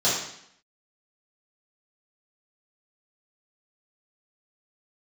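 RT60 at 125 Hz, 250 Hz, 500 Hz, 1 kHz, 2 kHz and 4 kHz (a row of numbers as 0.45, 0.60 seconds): 0.70, 0.75, 0.70, 0.70, 0.75, 0.70 seconds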